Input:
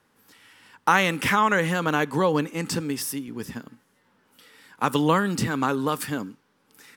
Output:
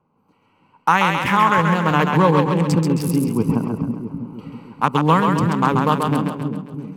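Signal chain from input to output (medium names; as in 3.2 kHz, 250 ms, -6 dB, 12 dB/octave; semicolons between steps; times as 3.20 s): local Wiener filter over 25 samples; fifteen-band graphic EQ 160 Hz +8 dB, 1 kHz +8 dB, 2.5 kHz +4 dB; level rider gain up to 16 dB; on a send: two-band feedback delay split 400 Hz, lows 326 ms, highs 134 ms, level -4 dB; on the sum: trim -1 dB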